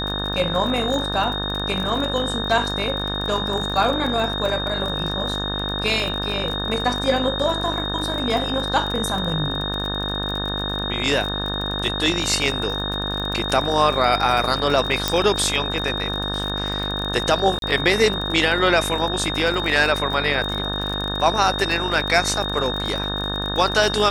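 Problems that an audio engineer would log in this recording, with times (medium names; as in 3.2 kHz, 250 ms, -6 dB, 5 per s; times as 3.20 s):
buzz 50 Hz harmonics 36 -28 dBFS
crackle 38 per s -25 dBFS
whine 3.7 kHz -26 dBFS
15.08 s: pop -2 dBFS
17.59–17.62 s: dropout 32 ms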